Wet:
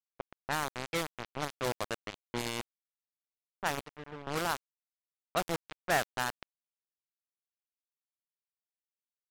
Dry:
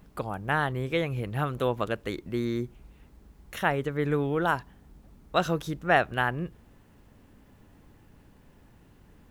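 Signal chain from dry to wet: bit-crush 4-bit; 3.79–4.27 wrapped overs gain 21 dB; low-pass opened by the level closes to 1100 Hz, open at -21.5 dBFS; gain -7.5 dB

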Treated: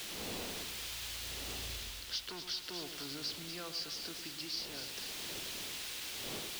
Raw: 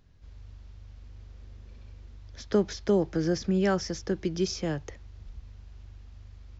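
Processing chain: Doppler pass-by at 1.82, 48 m/s, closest 4.1 m; wind noise 320 Hz -63 dBFS; in parallel at +3 dB: compressor, threshold -60 dBFS, peak gain reduction 24 dB; on the sum: soft clip -39.5 dBFS, distortion -8 dB; limiter -44 dBFS, peak gain reduction 4.5 dB; tone controls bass -10 dB, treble +8 dB; requantised 10-bit, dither triangular; bell 3400 Hz +12.5 dB 1.8 oct; on a send: split-band echo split 1200 Hz, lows 0.107 s, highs 0.244 s, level -9 dB; on the sum: vocal rider 0.5 s; gain +7 dB

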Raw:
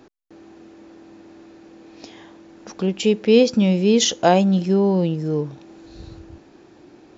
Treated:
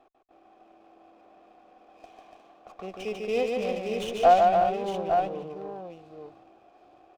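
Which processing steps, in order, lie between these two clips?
vowel filter a; tapped delay 0.146/0.288/0.357/0.86 s -3.5/-5.5/-10.5/-6.5 dB; running maximum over 5 samples; gain +2 dB

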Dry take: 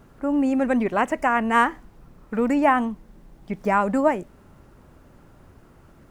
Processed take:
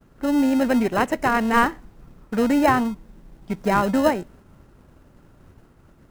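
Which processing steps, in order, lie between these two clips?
expander -46 dBFS; in parallel at -8.5 dB: sample-and-hold 38×

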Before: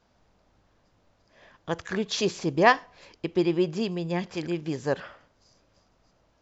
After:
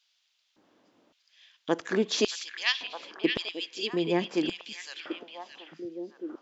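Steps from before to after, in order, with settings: LFO high-pass square 0.89 Hz 280–3200 Hz; delay with a stepping band-pass 0.619 s, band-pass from 2500 Hz, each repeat -1.4 oct, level -3.5 dB

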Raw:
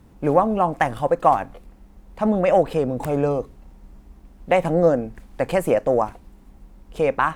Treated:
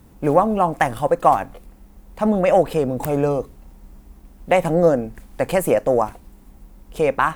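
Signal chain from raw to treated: high shelf 8900 Hz +12 dB; gain +1.5 dB

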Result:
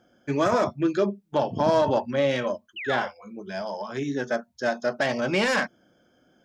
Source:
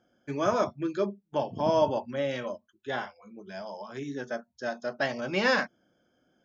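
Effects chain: self-modulated delay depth 0.097 ms; limiter -20 dBFS, peak gain reduction 8.5 dB; painted sound fall, 2.76–3.08, 490–3100 Hz -42 dBFS; gain +7.5 dB

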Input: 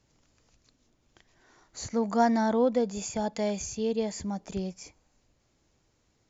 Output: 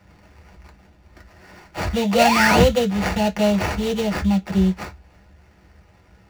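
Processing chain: painted sound rise, 2.13–2.63, 430–3900 Hz -26 dBFS; high shelf 5600 Hz +9.5 dB; in parallel at +1.5 dB: compressor, threshold -51 dBFS, peak gain reduction 30 dB; on the sum: sample-rate reducer 3500 Hz, jitter 20%; reverb RT60 0.10 s, pre-delay 5 ms, DRR 3 dB; gain -1 dB

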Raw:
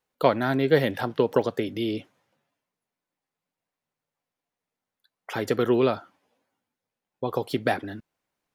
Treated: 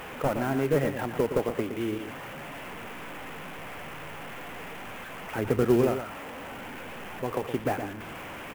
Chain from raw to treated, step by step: delta modulation 16 kbps, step -31 dBFS; 5.38–5.83 low shelf 250 Hz +8 dB; echo 0.117 s -8.5 dB; clock jitter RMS 0.022 ms; gain -3 dB

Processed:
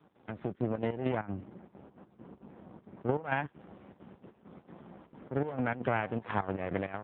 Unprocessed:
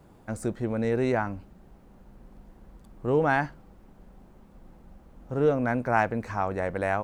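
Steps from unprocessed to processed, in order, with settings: step gate "x.xxxxx.xx.x..x" 199 bpm -12 dB; HPF 81 Hz 12 dB/oct; notch 2300 Hz, Q 28; 5.33–6.46 de-hum 189.2 Hz, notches 6; compressor 16:1, threshold -34 dBFS, peak gain reduction 17.5 dB; half-wave rectifier; AGC gain up to 11 dB; 1.16–3.25 high shelf 2500 Hz -8.5 dB; AMR-NB 5.9 kbps 8000 Hz

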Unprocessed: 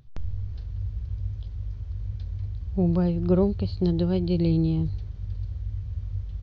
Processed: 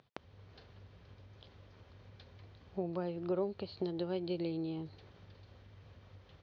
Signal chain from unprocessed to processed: compressor 5:1, threshold -29 dBFS, peak gain reduction 11.5 dB; BPF 390–3900 Hz; gain +3 dB

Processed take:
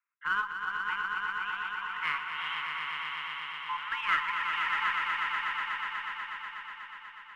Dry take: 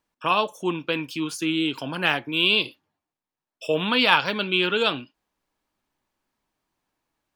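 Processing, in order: elliptic band-pass 580–2100 Hz, stop band 40 dB; frequency shift +410 Hz; in parallel at -9 dB: one-sided clip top -28.5 dBFS; on the sum: swelling echo 0.122 s, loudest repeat 5, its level -6 dB; gain -9 dB

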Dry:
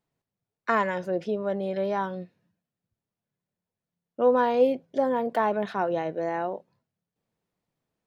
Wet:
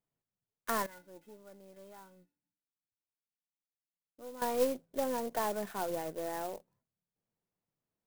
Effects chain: half-wave gain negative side -3 dB; 0.86–4.42 resonator 290 Hz, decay 0.16 s, harmonics odd, mix 90%; clock jitter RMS 0.058 ms; gain -7.5 dB

